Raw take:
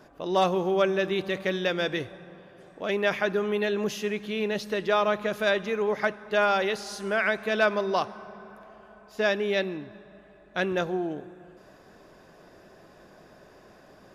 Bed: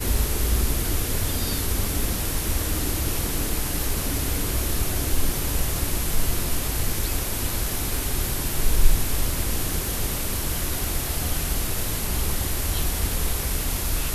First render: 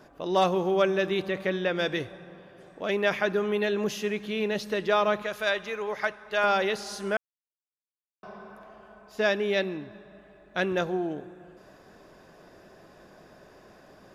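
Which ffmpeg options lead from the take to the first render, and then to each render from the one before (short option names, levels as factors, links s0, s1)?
-filter_complex "[0:a]asettb=1/sr,asplit=3[s0][s1][s2];[s0]atrim=end=1.264[s3];[s1]atrim=start=1.26:end=1.79,asetpts=PTS-STARTPTS,afade=t=in:d=0.004:c=qsin,afade=t=out:st=0.526:d=0.004:c=qsin,acrossover=split=2900[s4][s5];[s5]acompressor=threshold=0.00447:ratio=4:attack=1:release=60[s6];[s4][s6]amix=inputs=2:normalize=0[s7];[s2]atrim=start=1.786[s8];[s3][s7]acrossfade=d=0.004:c1=hsin:c2=qsin[s9];[s9][s8]acrossfade=d=0.004:c1=qsin:c2=hsin,asettb=1/sr,asplit=3[s10][s11][s12];[s10]atrim=end=5.224[s13];[s11]atrim=start=5.22:end=6.44,asetpts=PTS-STARTPTS,afade=t=in:d=0.004:c=qsin,afade=t=out:st=1.216:d=0.004:c=qsin,equalizer=f=230:w=0.61:g=-10.5[s14];[s12]atrim=start=6.436[s15];[s13][s14]acrossfade=d=0.004:c1=hsin:c2=qsin[s16];[s16][s15]acrossfade=d=0.004:c1=qsin:c2=hsin,asplit=3[s17][s18][s19];[s17]atrim=end=7.17,asetpts=PTS-STARTPTS,afade=t=out:st=7.166:d=0.004:c=hsin[s20];[s18]atrim=start=7.17:end=8.23,asetpts=PTS-STARTPTS,volume=0[s21];[s19]atrim=start=8.23,asetpts=PTS-STARTPTS,afade=t=in:d=0.004:c=hsin[s22];[s20][s21][s22]concat=n=3:v=0:a=1"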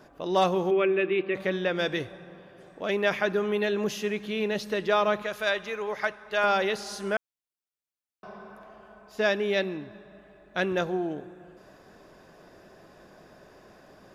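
-filter_complex "[0:a]asplit=3[s0][s1][s2];[s0]afade=t=out:st=0.7:d=0.02[s3];[s1]highpass=f=190:w=0.5412,highpass=f=190:w=1.3066,equalizer=f=220:t=q:w=4:g=-6,equalizer=f=360:t=q:w=4:g=5,equalizer=f=610:t=q:w=4:g=-6,equalizer=f=870:t=q:w=4:g=-10,equalizer=f=1500:t=q:w=4:g=-4,equalizer=f=2500:t=q:w=4:g=8,lowpass=f=2700:w=0.5412,lowpass=f=2700:w=1.3066,afade=t=in:st=0.7:d=0.02,afade=t=out:st=1.34:d=0.02[s4];[s2]afade=t=in:st=1.34:d=0.02[s5];[s3][s4][s5]amix=inputs=3:normalize=0"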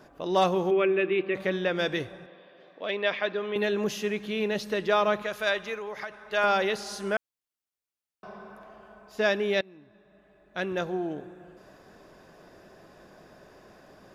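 -filter_complex "[0:a]asettb=1/sr,asplit=3[s0][s1][s2];[s0]atrim=end=2.264[s3];[s1]atrim=start=2.26:end=3.56,asetpts=PTS-STARTPTS,afade=t=in:d=0.004:c=qsin,afade=t=out:st=1.296:d=0.004:c=qsin,highpass=320,equalizer=f=370:t=q:w=4:g=-5,equalizer=f=830:t=q:w=4:g=-5,equalizer=f=1400:t=q:w=4:g=-5,equalizer=f=3700:t=q:w=4:g=4,lowpass=f=4300:w=0.5412,lowpass=f=4300:w=1.3066[s4];[s2]atrim=start=3.556[s5];[s3][s4]acrossfade=d=0.004:c1=hsin:c2=qsin[s6];[s6][s5]acrossfade=d=0.004:c1=qsin:c2=hsin,asettb=1/sr,asplit=3[s7][s8][s9];[s7]atrim=end=5.744[s10];[s8]atrim=start=5.74:end=6.2,asetpts=PTS-STARTPTS,afade=t=in:d=0.004:c=qsin,afade=t=out:st=0.456:d=0.004:c=qsin,acompressor=threshold=0.0224:ratio=4:attack=3.2:release=140:knee=1:detection=peak[s11];[s9]atrim=start=6.196[s12];[s10][s11]acrossfade=d=0.004:c1=hsin:c2=qsin[s13];[s13][s12]acrossfade=d=0.004:c1=qsin:c2=hsin,asplit=2[s14][s15];[s14]atrim=end=9.61,asetpts=PTS-STARTPTS,afade=t=out:st=9.606:d=0.004:c=hsin:silence=0.0749894[s16];[s15]atrim=start=9.61,asetpts=PTS-STARTPTS,afade=t=in:d=1.67:silence=0.0749894[s17];[s16][s17]concat=n=2:v=0:a=1"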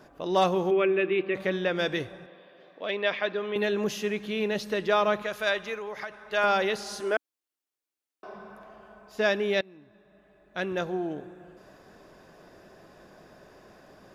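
-filter_complex "[0:a]asettb=1/sr,asplit=3[s0][s1][s2];[s0]atrim=end=7.004[s3];[s1]atrim=start=7:end=8.34,asetpts=PTS-STARTPTS,afade=t=in:d=0.004:c=qsin,afade=t=out:st=1.336:d=0.004:c=qsin,lowshelf=f=230:t=q:w=3:g=-8[s4];[s2]atrim=start=8.336[s5];[s3][s4]acrossfade=d=0.004:c1=hsin:c2=qsin[s6];[s6][s5]acrossfade=d=0.004:c1=qsin:c2=hsin"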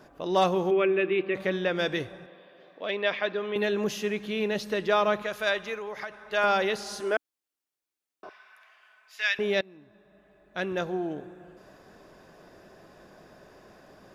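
-filter_complex "[0:a]asettb=1/sr,asplit=3[s0][s1][s2];[s0]atrim=end=8.294[s3];[s1]atrim=start=8.29:end=9.39,asetpts=PTS-STARTPTS,afade=t=in:d=0.004:c=qsin,afade=t=out:st=1.096:d=0.004:c=qsin,highpass=f=2100:t=q:w=2[s4];[s2]atrim=start=9.386[s5];[s3][s4]acrossfade=d=0.004:c1=hsin:c2=qsin[s6];[s6][s5]acrossfade=d=0.004:c1=qsin:c2=hsin"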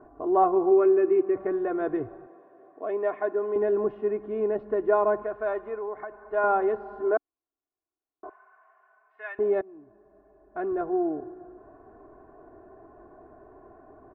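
-af "lowpass=f=1200:w=0.5412,lowpass=f=1200:w=1.3066,aecho=1:1:2.8:0.86"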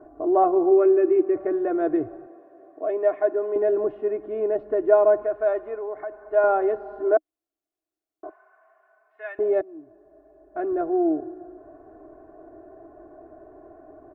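-af "equalizer=f=200:t=o:w=0.33:g=-10,equalizer=f=315:t=o:w=0.33:g=9,equalizer=f=630:t=o:w=0.33:g=8,equalizer=f=1000:t=o:w=0.33:g=-5"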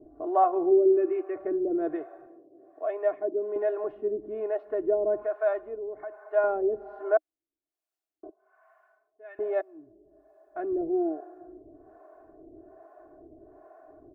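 -filter_complex "[0:a]acrossover=split=500[s0][s1];[s0]aeval=exprs='val(0)*(1-1/2+1/2*cos(2*PI*1.2*n/s))':c=same[s2];[s1]aeval=exprs='val(0)*(1-1/2-1/2*cos(2*PI*1.2*n/s))':c=same[s3];[s2][s3]amix=inputs=2:normalize=0"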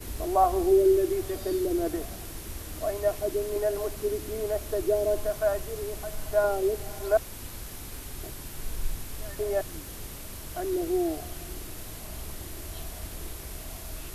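-filter_complex "[1:a]volume=0.2[s0];[0:a][s0]amix=inputs=2:normalize=0"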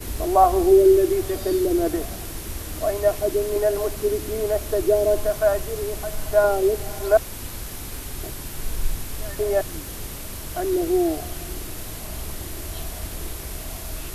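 -af "volume=2.11"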